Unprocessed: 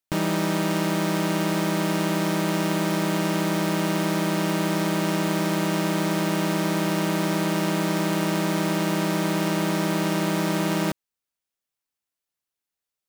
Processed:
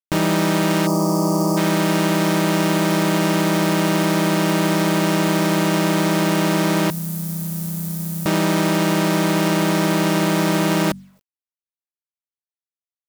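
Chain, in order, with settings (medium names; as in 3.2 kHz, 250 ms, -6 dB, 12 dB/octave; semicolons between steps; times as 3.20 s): de-hum 47.81 Hz, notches 5; 0.87–1.57 s: time-frequency box 1.3–4.4 kHz -23 dB; 6.90–8.26 s: FFT filter 150 Hz 0 dB, 260 Hz -26 dB, 2.7 kHz -26 dB, 13 kHz +3 dB; in parallel at -0.5 dB: peak limiter -22 dBFS, peak gain reduction 8.5 dB; on the sum: word length cut 10-bit, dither none; trim +2.5 dB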